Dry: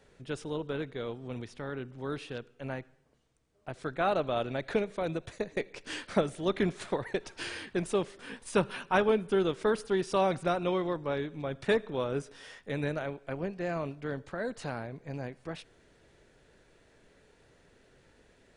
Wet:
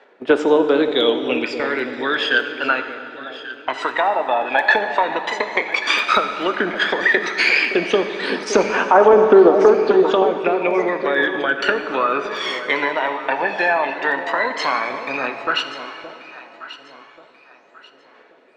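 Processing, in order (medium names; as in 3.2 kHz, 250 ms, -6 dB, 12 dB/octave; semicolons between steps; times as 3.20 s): low-pass that closes with the level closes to 1.2 kHz, closed at -25.5 dBFS; elliptic band-pass 250–8500 Hz, stop band 40 dB; gate -52 dBFS, range -18 dB; three-band isolator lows -14 dB, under 510 Hz, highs -20 dB, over 4.9 kHz; compression, threshold -39 dBFS, peak gain reduction 13 dB; phaser 0.11 Hz, delay 1.2 ms, feedback 78%; echo whose repeats swap between lows and highs 568 ms, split 820 Hz, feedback 56%, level -10 dB; on a send at -7.5 dB: reverberation RT60 2.8 s, pre-delay 4 ms; on the sum: loudness maximiser +24.5 dB; trim -1 dB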